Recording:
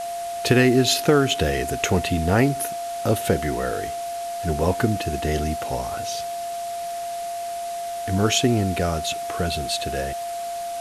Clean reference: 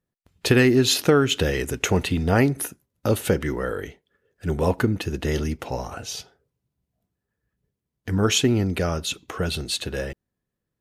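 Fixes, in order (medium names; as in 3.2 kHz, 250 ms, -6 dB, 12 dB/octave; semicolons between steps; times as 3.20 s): band-stop 690 Hz, Q 30; noise print and reduce 30 dB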